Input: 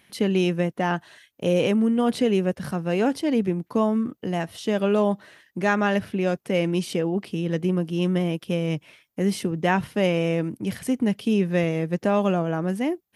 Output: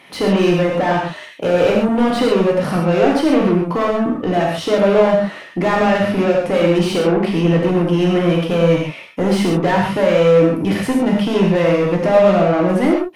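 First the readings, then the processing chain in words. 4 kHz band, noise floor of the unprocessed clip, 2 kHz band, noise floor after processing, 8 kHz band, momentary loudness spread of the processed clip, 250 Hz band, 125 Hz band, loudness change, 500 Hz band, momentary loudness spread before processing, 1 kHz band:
+8.0 dB, -67 dBFS, +7.5 dB, -35 dBFS, +5.0 dB, 6 LU, +7.0 dB, +7.5 dB, +8.5 dB, +10.5 dB, 6 LU, +9.5 dB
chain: HPF 62 Hz 24 dB/oct; notch 1600 Hz, Q 5.9; overdrive pedal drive 28 dB, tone 1100 Hz, clips at -8 dBFS; non-linear reverb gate 0.16 s flat, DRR -2 dB; gain -1 dB

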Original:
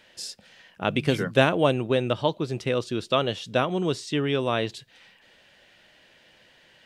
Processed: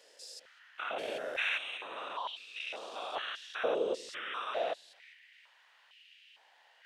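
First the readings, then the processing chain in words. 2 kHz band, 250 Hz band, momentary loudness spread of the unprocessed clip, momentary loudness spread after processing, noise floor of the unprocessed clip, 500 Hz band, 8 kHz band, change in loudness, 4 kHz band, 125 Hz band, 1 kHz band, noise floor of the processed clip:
-6.5 dB, -23.5 dB, 11 LU, 16 LU, -58 dBFS, -12.5 dB, -11.5 dB, -11.5 dB, -9.0 dB, under -35 dB, -9.5 dB, -65 dBFS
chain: stepped spectrum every 0.2 s; whisperiser; stepped high-pass 2.2 Hz 500–2700 Hz; gain -8 dB

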